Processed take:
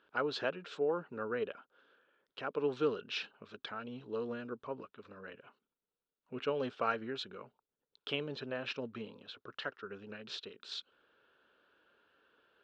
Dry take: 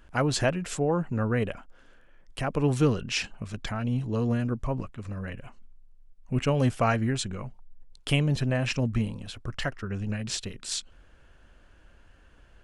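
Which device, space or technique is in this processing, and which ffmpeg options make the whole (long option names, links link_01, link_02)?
phone earpiece: -af "highpass=350,equalizer=frequency=430:width_type=q:width=4:gain=7,equalizer=frequency=710:width_type=q:width=4:gain=-5,equalizer=frequency=1400:width_type=q:width=4:gain=6,equalizer=frequency=2000:width_type=q:width=4:gain=-7,equalizer=frequency=3700:width_type=q:width=4:gain=6,lowpass=frequency=4200:width=0.5412,lowpass=frequency=4200:width=1.3066,volume=-8.5dB"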